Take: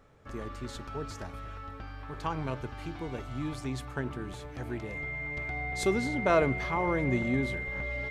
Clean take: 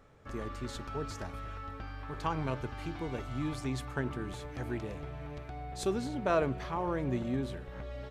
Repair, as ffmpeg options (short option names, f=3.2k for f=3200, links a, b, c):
-af "bandreject=f=2.1k:w=30,asetnsamples=n=441:p=0,asendcmd='5.37 volume volume -4dB',volume=0dB"